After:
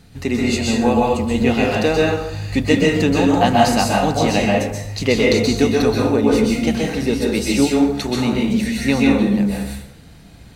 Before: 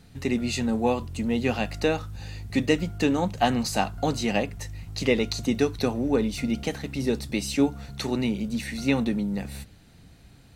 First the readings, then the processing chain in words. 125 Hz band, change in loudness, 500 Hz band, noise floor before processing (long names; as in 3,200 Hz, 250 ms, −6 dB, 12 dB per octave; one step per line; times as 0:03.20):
+9.0 dB, +9.5 dB, +10.0 dB, −52 dBFS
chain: dense smooth reverb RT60 0.77 s, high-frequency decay 0.65×, pre-delay 115 ms, DRR −3 dB
level +5 dB